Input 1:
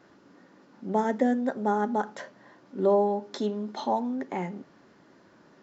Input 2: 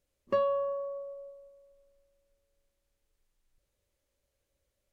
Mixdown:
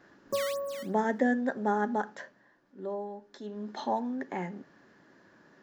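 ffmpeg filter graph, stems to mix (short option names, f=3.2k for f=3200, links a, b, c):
-filter_complex "[0:a]equalizer=f=1.7k:w=7.2:g=10.5,volume=8dB,afade=t=out:st=1.91:d=0.59:silence=0.266073,afade=t=in:st=3.44:d=0.24:silence=0.298538,asplit=2[a][b];[1:a]lowpass=f=1.2k:w=0.5412,lowpass=f=1.2k:w=1.3066,acrusher=samples=10:mix=1:aa=0.000001:lfo=1:lforange=16:lforate=2.8,volume=-3dB[c];[b]apad=whole_len=217080[d];[c][d]sidechaincompress=threshold=-45dB:ratio=8:attack=7:release=977[e];[a][e]amix=inputs=2:normalize=0"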